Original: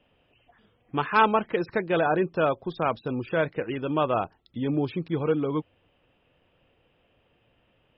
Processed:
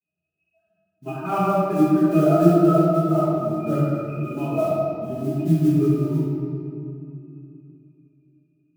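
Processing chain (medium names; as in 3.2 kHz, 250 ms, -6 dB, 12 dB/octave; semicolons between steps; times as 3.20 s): expander on every frequency bin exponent 1.5; high-pass 140 Hz 24 dB/octave; spectral replace 3.48–3.76 s, 280–2500 Hz after; tape speed -9%; pitch-class resonator D#, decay 0.11 s; vibrato 0.46 Hz 51 cents; modulation noise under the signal 25 dB; reverberation RT60 2.6 s, pre-delay 5 ms, DRR -12 dB; trim +5 dB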